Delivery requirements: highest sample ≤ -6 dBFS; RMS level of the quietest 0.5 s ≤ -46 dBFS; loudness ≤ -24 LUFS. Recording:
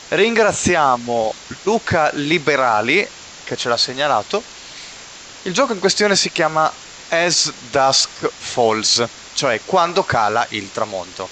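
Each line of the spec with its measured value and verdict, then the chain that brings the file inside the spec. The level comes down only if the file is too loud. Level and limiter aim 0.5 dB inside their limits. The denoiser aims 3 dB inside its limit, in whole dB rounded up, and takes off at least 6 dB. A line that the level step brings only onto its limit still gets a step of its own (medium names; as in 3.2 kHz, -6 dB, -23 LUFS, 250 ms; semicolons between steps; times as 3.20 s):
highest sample -3.5 dBFS: fail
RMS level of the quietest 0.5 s -38 dBFS: fail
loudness -17.0 LUFS: fail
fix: noise reduction 6 dB, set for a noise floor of -38 dBFS; trim -7.5 dB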